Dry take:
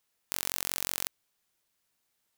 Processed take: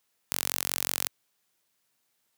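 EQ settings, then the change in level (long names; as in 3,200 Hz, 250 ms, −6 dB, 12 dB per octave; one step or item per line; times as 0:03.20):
high-pass filter 100 Hz 12 dB per octave
+3.0 dB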